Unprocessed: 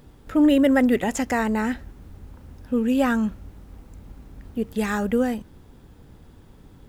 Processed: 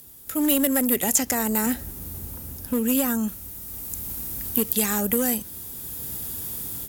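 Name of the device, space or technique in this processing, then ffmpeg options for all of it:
FM broadcast chain: -filter_complex "[0:a]asettb=1/sr,asplit=3[link_01][link_02][link_03];[link_01]atrim=end=1.664[link_04];[link_02]atrim=start=1.66:end=3.28,asetpts=PTS-STARTPTS,afade=type=in:duration=0.004:curve=qsin,afade=type=out:start_time=1.616:duration=0.004:curve=qsin,tiltshelf=frequency=1100:gain=4[link_05];[link_03]atrim=start=3.276[link_06];[link_04][link_05]acrossfade=duration=0.004:curve1=hsin:curve2=qsin[link_07];[link_07][link_06]acrossfade=duration=0.004:curve1=qsin:curve2=hsin,highpass=58,dynaudnorm=framelen=360:gausssize=3:maxgain=15dB,acrossover=split=370|1100|6500[link_08][link_09][link_10][link_11];[link_08]acompressor=threshold=-14dB:ratio=4[link_12];[link_09]acompressor=threshold=-17dB:ratio=4[link_13];[link_10]acompressor=threshold=-30dB:ratio=4[link_14];[link_11]acompressor=threshold=-45dB:ratio=4[link_15];[link_12][link_13][link_14][link_15]amix=inputs=4:normalize=0,aemphasis=mode=production:type=75fm,alimiter=limit=-7.5dB:level=0:latency=1:release=458,asoftclip=type=hard:threshold=-11dB,lowpass=frequency=15000:width=0.5412,lowpass=frequency=15000:width=1.3066,aemphasis=mode=production:type=75fm,volume=-6.5dB"

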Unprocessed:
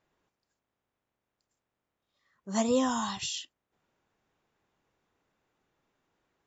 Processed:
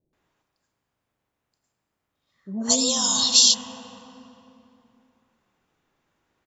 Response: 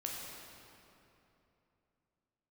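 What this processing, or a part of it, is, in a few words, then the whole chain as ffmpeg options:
ducked reverb: -filter_complex "[0:a]asplit=3[link_01][link_02][link_03];[1:a]atrim=start_sample=2205[link_04];[link_02][link_04]afir=irnorm=-1:irlink=0[link_05];[link_03]apad=whole_len=285039[link_06];[link_05][link_06]sidechaincompress=threshold=-35dB:ratio=8:attack=16:release=293,volume=0dB[link_07];[link_01][link_07]amix=inputs=2:normalize=0,asplit=3[link_08][link_09][link_10];[link_08]afade=type=out:start_time=2.56:duration=0.02[link_11];[link_09]highshelf=frequency=3000:width_type=q:width=3:gain=14,afade=type=in:start_time=2.56:duration=0.02,afade=type=out:start_time=3.4:duration=0.02[link_12];[link_10]afade=type=in:start_time=3.4:duration=0.02[link_13];[link_11][link_12][link_13]amix=inputs=3:normalize=0,acrossover=split=480[link_14][link_15];[link_15]adelay=130[link_16];[link_14][link_16]amix=inputs=2:normalize=0"

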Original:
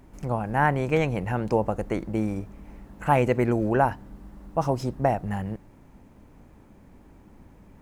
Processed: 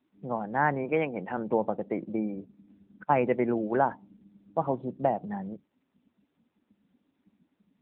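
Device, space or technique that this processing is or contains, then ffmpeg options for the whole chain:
mobile call with aggressive noise cancelling: -filter_complex "[0:a]asplit=3[link_01][link_02][link_03];[link_01]afade=type=out:start_time=0.83:duration=0.02[link_04];[link_02]highpass=180,afade=type=in:start_time=0.83:duration=0.02,afade=type=out:start_time=1.36:duration=0.02[link_05];[link_03]afade=type=in:start_time=1.36:duration=0.02[link_06];[link_04][link_05][link_06]amix=inputs=3:normalize=0,asettb=1/sr,asplit=3[link_07][link_08][link_09];[link_07]atrim=end=3.034[link_10];[link_08]atrim=start=3.03:end=3.81,asetpts=PTS-STARTPTS,afade=type=in:duration=0.004:curve=qsin,afade=type=out:start_time=0.776:duration=0.004:curve=qsin,agate=range=-21dB:threshold=-24dB:ratio=16:detection=peak[link_11];[link_09]atrim=start=3.806[link_12];[link_10][link_11]acrossfade=duration=0.004:curve1=hsin:curve2=qsin[link_13];[link_13][link_12]acrossfade=duration=0.004:curve1=qsin:curve2=hsin,asplit=3[link_14][link_15][link_16];[link_14]afade=type=out:start_time=4.49:duration=0.02[link_17];[link_15]equalizer=frequency=4000:width_type=o:width=1.1:gain=4,afade=type=in:start_time=4.49:duration=0.02,afade=type=out:start_time=5.1:duration=0.02[link_18];[link_16]afade=type=in:start_time=5.1:duration=0.02[link_19];[link_17][link_18][link_19]amix=inputs=3:normalize=0,highpass=frequency=160:width=0.5412,highpass=frequency=160:width=1.3066,afftdn=noise_reduction=21:noise_floor=-37,volume=-2.5dB" -ar 8000 -c:a libopencore_amrnb -b:a 10200

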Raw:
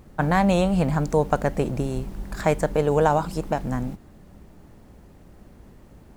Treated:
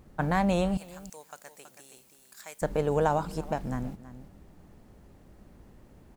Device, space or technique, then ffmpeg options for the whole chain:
ducked delay: -filter_complex "[0:a]asettb=1/sr,asplit=3[link_01][link_02][link_03];[link_01]atrim=end=0.774[link_04];[link_02]atrim=start=0.77:end=2.62,asetpts=PTS-STARTPTS,afade=type=in:duration=0.004:curve=qsin,afade=type=out:start_time=1.846:duration=0.004:curve=qsin,aderivative[link_05];[link_03]atrim=start=2.616[link_06];[link_04][link_05]acrossfade=duration=0.004:curve1=hsin:curve2=qsin[link_07];[link_07][link_06]acrossfade=duration=0.004:curve1=qsin:curve2=hsin,asplit=3[link_08][link_09][link_10];[link_09]adelay=325,volume=-8dB[link_11];[link_10]apad=whole_len=286321[link_12];[link_11][link_12]sidechaincompress=threshold=-34dB:ratio=8:attack=16:release=570[link_13];[link_08][link_13]amix=inputs=2:normalize=0,volume=-6dB"

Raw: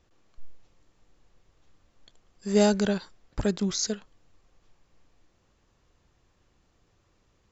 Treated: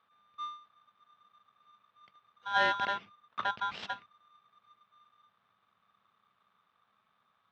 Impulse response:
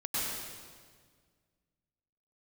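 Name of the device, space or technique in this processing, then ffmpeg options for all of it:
ring modulator pedal into a guitar cabinet: -filter_complex "[0:a]aeval=exprs='val(0)*sgn(sin(2*PI*1200*n/s))':channel_layout=same,highpass=93,equalizer=frequency=110:width_type=q:width=4:gain=5,equalizer=frequency=200:width_type=q:width=4:gain=9,equalizer=frequency=310:width_type=q:width=4:gain=-7,lowpass=frequency=3500:width=0.5412,lowpass=frequency=3500:width=1.3066,asettb=1/sr,asplit=3[link_01][link_02][link_03];[link_01]atrim=end=2.954[link_04];[link_02]atrim=start=2.95:end=3.84,asetpts=PTS-STARTPTS,afade=type=in:duration=0.004:curve=qsin,afade=type=out:start_time=0.886:duration=0.004:curve=qsin,highshelf=frequency=5300:gain=-5[link_05];[link_03]atrim=start=3.836[link_06];[link_04][link_05]acrossfade=duration=0.004:curve1=hsin:curve2=qsin[link_07];[link_07][link_06]acrossfade=duration=0.004:curve1=qsin:curve2=hsin,volume=-6.5dB"

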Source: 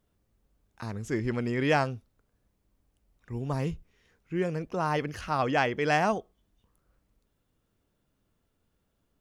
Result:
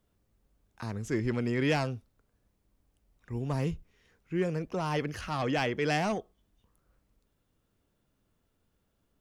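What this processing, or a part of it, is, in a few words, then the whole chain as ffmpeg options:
one-band saturation: -filter_complex "[0:a]acrossover=split=400|2100[link_01][link_02][link_03];[link_02]asoftclip=type=tanh:threshold=-30dB[link_04];[link_01][link_04][link_03]amix=inputs=3:normalize=0"

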